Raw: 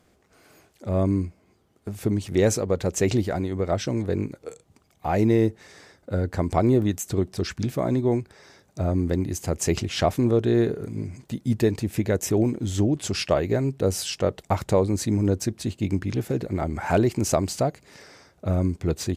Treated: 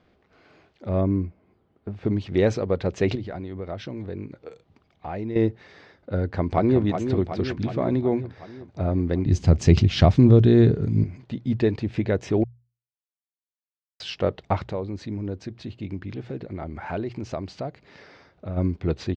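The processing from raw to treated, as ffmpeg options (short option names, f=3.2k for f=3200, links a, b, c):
-filter_complex "[0:a]asettb=1/sr,asplit=3[a][b][c];[a]atrim=end=1.014[d];[b]atrim=start=1.01:end=2.05,asetpts=PTS-STARTPTS,afade=t=in:d=0.004:c=qsin,afade=t=out:st=1.036:d=0.004:c=qsin,highshelf=f=2.7k:g=-12[e];[c]atrim=start=2.046[f];[d][e]acrossfade=d=0.004:c1=hsin:c2=qsin[g];[g][f]acrossfade=d=0.004:c1=qsin:c2=hsin,asettb=1/sr,asplit=3[h][i][j];[h]atrim=end=3.154[k];[i]atrim=start=3.15:end=5.36,asetpts=PTS-STARTPTS,afade=t=in:d=0.004:c=qsin,afade=t=out:st=2.206:d=0.004:c=qsin,acompressor=threshold=-35dB:ratio=2:attack=3.2:release=140:knee=1:detection=peak[l];[j]atrim=start=5.356[m];[k][l]acrossfade=d=0.004:c1=hsin:c2=qsin[n];[n][m]acrossfade=d=0.004:c1=qsin:c2=hsin,asplit=2[o][p];[p]afade=t=in:st=6.19:d=0.01,afade=t=out:st=6.81:d=0.01,aecho=0:1:370|740|1110|1480|1850|2220|2590|2960|3330:0.446684|0.290344|0.188724|0.12267|0.0797358|0.0518283|0.0336884|0.0218974|0.0142333[q];[o][q]amix=inputs=2:normalize=0,asettb=1/sr,asplit=3[r][s][t];[r]atrim=end=9.264[u];[s]atrim=start=9.26:end=11.04,asetpts=PTS-STARTPTS,afade=t=in:d=0.004:c=qsin,afade=t=out:st=1.776:d=0.004:c=qsin,bass=f=250:g=13,treble=f=4k:g=10[v];[t]atrim=start=11.036[w];[u][v]acrossfade=d=0.004:c1=hsin:c2=qsin[x];[x][w]acrossfade=d=0.004:c1=qsin:c2=hsin,asplit=3[y][z][aa];[y]afade=t=out:st=14.66:d=0.02[ab];[z]acompressor=threshold=-41dB:ratio=1.5:attack=3.2:release=140:knee=1:detection=peak,afade=t=in:st=14.66:d=0.02,afade=t=out:st=18.56:d=0.02[ac];[aa]afade=t=in:st=18.56:d=0.02[ad];[ab][ac][ad]amix=inputs=3:normalize=0,asplit=3[ae][af][ag];[ae]atrim=end=12.44,asetpts=PTS-STARTPTS,afade=t=out:st=12.436:d=0.004:c=hsin[ah];[af]atrim=start=12.44:end=14,asetpts=PTS-STARTPTS,volume=0[ai];[ag]atrim=start=14,asetpts=PTS-STARTPTS,afade=t=in:d=0.004:c=hsin[aj];[ah][ai][aj]concat=n=3:v=0:a=1,lowpass=f=4.2k:w=0.5412,lowpass=f=4.2k:w=1.3066,bandreject=f=60:t=h:w=6,bandreject=f=120:t=h:w=6"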